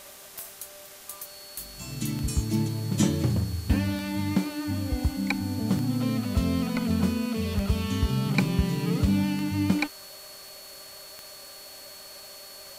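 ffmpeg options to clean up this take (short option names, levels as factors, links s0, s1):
-af "adeclick=t=4,bandreject=f=391.1:t=h:w=4,bandreject=f=782.2:t=h:w=4,bandreject=f=1173.3:t=h:w=4,bandreject=f=1564.4:t=h:w=4,bandreject=f=4400:w=30,afwtdn=0.005"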